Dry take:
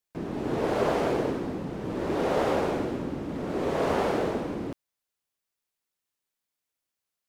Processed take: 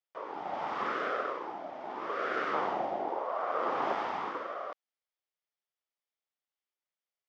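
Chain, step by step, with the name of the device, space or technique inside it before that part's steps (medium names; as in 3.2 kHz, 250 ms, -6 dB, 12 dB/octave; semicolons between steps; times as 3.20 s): 2.53–3.93 s: bass shelf 230 Hz +11 dB; voice changer toy (ring modulator with a swept carrier 670 Hz, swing 35%, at 0.87 Hz; cabinet simulation 510–4700 Hz, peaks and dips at 1 kHz -5 dB, 1.6 kHz -5 dB, 2.6 kHz -5 dB, 4.1 kHz -8 dB)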